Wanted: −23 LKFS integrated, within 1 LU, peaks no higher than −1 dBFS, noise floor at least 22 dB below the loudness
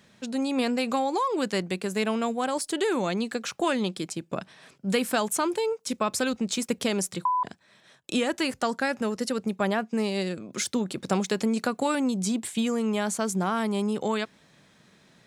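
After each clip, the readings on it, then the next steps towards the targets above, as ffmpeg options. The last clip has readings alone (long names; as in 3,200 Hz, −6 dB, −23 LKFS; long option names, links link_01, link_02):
integrated loudness −28.0 LKFS; sample peak −12.0 dBFS; target loudness −23.0 LKFS
→ -af "volume=5dB"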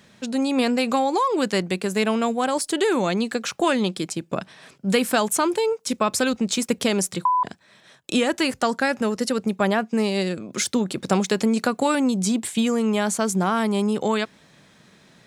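integrated loudness −23.0 LKFS; sample peak −7.0 dBFS; background noise floor −55 dBFS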